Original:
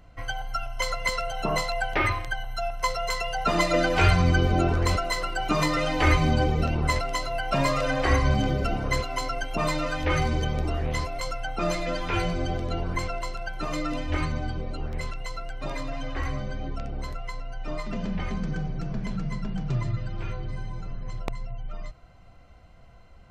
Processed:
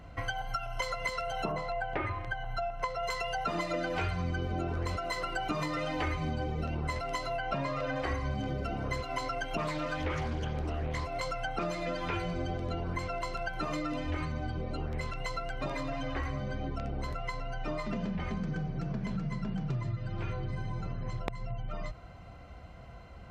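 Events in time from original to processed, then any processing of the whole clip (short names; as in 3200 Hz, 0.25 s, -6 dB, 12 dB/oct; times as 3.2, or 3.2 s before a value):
1.51–3.02 LPF 1100 Hz -> 2400 Hz 6 dB/oct
7.37–7.96 air absorption 94 m
9.17–11.66 Doppler distortion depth 0.25 ms
whole clip: HPF 44 Hz; high shelf 4400 Hz -7 dB; compressor 6:1, threshold -37 dBFS; gain +5.5 dB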